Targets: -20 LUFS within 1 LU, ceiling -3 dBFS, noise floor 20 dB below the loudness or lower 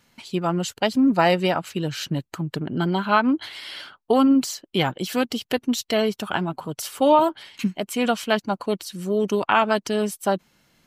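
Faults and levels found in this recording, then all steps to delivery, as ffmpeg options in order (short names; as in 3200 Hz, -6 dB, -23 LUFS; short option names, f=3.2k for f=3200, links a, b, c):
loudness -23.0 LUFS; peak -5.0 dBFS; loudness target -20.0 LUFS
-> -af "volume=3dB,alimiter=limit=-3dB:level=0:latency=1"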